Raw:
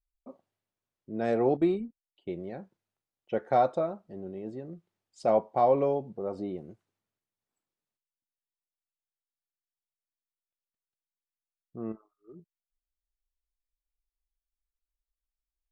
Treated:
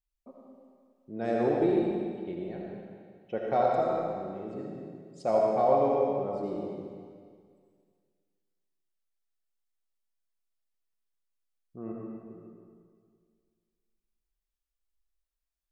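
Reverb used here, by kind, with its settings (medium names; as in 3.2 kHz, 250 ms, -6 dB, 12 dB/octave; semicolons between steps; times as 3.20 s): algorithmic reverb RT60 2 s, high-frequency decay 0.95×, pre-delay 35 ms, DRR -2.5 dB; trim -3.5 dB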